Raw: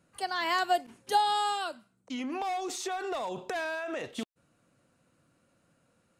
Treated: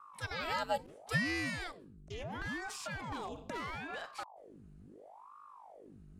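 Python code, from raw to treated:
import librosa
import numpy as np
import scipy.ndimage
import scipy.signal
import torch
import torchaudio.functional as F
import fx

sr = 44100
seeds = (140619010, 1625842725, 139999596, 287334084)

y = fx.dmg_buzz(x, sr, base_hz=50.0, harmonics=6, level_db=-48.0, tilt_db=-8, odd_only=False)
y = fx.vibrato(y, sr, rate_hz=0.49, depth_cents=6.9)
y = fx.ring_lfo(y, sr, carrier_hz=630.0, swing_pct=85, hz=0.74)
y = y * 10.0 ** (-4.5 / 20.0)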